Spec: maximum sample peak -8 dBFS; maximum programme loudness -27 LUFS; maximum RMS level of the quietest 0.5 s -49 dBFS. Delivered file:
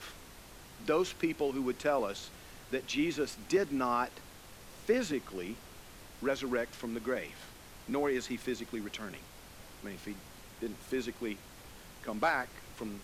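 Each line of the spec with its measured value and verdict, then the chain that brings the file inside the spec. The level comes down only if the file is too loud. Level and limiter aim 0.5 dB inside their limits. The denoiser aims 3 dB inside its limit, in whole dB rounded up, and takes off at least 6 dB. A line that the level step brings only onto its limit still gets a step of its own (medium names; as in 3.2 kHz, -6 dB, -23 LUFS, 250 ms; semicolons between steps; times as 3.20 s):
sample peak -17.5 dBFS: pass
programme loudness -35.5 LUFS: pass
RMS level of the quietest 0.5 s -52 dBFS: pass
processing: none needed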